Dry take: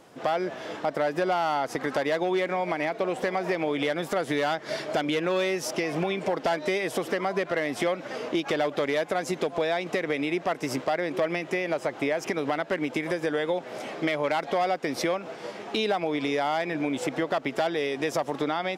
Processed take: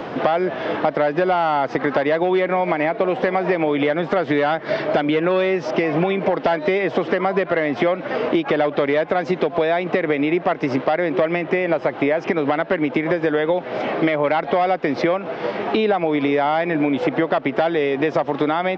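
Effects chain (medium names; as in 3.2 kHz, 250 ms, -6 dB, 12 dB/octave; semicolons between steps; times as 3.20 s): Gaussian low-pass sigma 2.5 samples; three bands compressed up and down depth 70%; trim +8 dB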